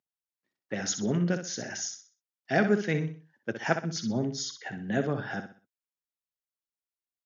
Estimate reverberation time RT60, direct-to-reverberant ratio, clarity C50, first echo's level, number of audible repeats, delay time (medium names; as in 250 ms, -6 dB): no reverb, no reverb, no reverb, -9.0 dB, 3, 63 ms